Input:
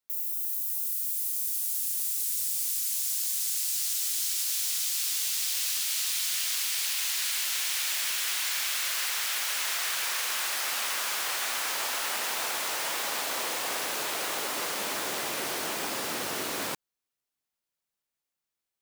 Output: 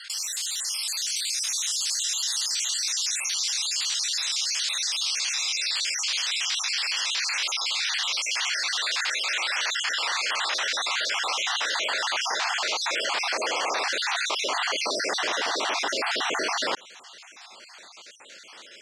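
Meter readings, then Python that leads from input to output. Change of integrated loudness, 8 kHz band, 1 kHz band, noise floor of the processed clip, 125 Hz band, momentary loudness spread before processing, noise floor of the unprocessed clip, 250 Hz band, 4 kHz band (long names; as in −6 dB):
+2.5 dB, +1.5 dB, +6.0 dB, −48 dBFS, can't be measured, 4 LU, below −85 dBFS, +1.0 dB, +7.0 dB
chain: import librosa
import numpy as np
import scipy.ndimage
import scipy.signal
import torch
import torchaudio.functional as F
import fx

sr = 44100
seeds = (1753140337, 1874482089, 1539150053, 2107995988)

y = fx.spec_dropout(x, sr, seeds[0], share_pct=49)
y = scipy.signal.sosfilt(scipy.signal.butter(4, 5900.0, 'lowpass', fs=sr, output='sos'), y)
y = fx.rider(y, sr, range_db=10, speed_s=0.5)
y = scipy.signal.sosfilt(scipy.signal.butter(2, 410.0, 'highpass', fs=sr, output='sos'), y)
y = fx.env_flatten(y, sr, amount_pct=70)
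y = F.gain(torch.from_numpy(y), 7.5).numpy()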